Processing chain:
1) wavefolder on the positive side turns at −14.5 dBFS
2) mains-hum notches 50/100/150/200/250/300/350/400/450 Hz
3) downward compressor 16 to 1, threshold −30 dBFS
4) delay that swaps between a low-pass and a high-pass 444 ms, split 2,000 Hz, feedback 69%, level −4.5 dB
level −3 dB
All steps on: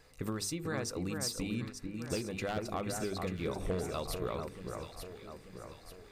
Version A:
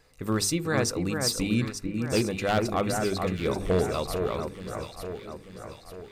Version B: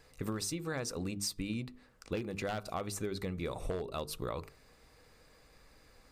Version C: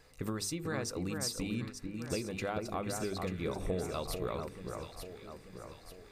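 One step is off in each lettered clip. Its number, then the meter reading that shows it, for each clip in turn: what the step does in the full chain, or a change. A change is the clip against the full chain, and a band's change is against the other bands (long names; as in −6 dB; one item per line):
3, average gain reduction 7.5 dB
4, change in momentary loudness spread −9 LU
1, distortion level −16 dB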